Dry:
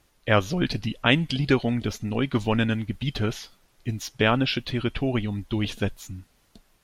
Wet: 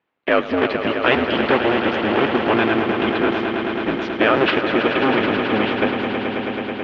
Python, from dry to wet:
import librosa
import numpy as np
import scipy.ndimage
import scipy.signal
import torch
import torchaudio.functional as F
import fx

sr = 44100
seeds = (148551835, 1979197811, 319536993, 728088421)

p1 = fx.cycle_switch(x, sr, every=2, mode='inverted')
p2 = fx.leveller(p1, sr, passes=3)
p3 = scipy.signal.sosfilt(scipy.signal.butter(4, 2800.0, 'lowpass', fs=sr, output='sos'), p2)
p4 = fx.level_steps(p3, sr, step_db=19)
p5 = p3 + (p4 * librosa.db_to_amplitude(1.0))
p6 = scipy.signal.sosfilt(scipy.signal.butter(2, 280.0, 'highpass', fs=sr, output='sos'), p5)
p7 = p6 + fx.echo_swell(p6, sr, ms=108, loudest=5, wet_db=-10, dry=0)
y = p7 * librosa.db_to_amplitude(-5.0)